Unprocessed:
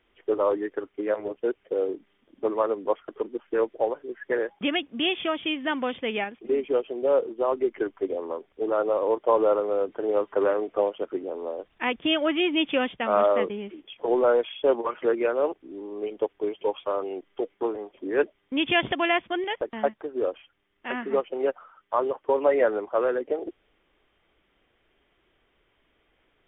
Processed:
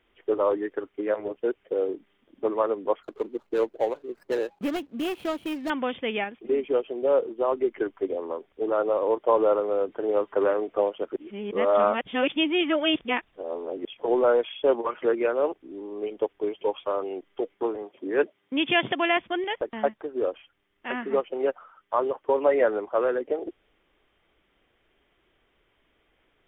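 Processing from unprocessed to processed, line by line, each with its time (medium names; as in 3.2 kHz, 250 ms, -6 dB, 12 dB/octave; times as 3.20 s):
3.03–5.70 s: median filter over 25 samples
11.16–13.85 s: reverse
17.82–19.17 s: high-pass 110 Hz 24 dB/octave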